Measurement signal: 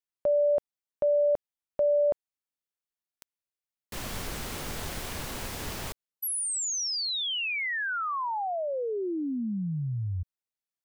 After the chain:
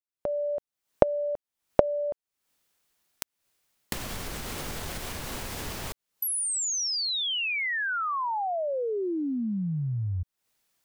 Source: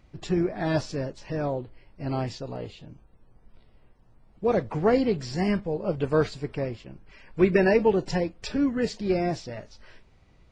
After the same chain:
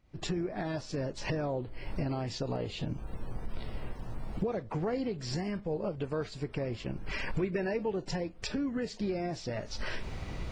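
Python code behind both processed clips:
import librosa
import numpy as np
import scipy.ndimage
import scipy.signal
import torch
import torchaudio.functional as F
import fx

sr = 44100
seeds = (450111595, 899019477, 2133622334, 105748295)

y = fx.recorder_agc(x, sr, target_db=-13.5, rise_db_per_s=66.0, max_gain_db=32)
y = F.gain(torch.from_numpy(y), -12.5).numpy()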